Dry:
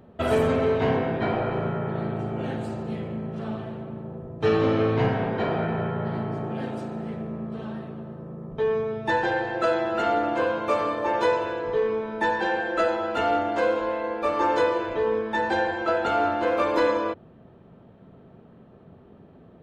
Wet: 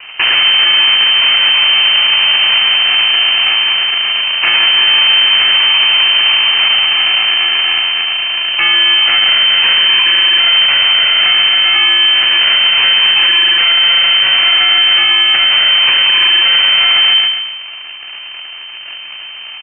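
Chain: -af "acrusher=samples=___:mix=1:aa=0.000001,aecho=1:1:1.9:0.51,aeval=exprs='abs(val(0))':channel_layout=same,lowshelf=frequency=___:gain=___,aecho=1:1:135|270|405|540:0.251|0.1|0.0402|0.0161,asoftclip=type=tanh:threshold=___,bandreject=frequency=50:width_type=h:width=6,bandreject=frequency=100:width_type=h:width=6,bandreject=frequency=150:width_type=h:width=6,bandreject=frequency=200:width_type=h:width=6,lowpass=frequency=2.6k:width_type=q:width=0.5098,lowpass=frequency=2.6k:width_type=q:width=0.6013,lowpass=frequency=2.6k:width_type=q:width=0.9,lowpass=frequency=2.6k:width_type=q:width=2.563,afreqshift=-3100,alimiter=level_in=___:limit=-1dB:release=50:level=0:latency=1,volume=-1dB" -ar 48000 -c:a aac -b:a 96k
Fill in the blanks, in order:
32, 90, -4, -22.5dB, 24dB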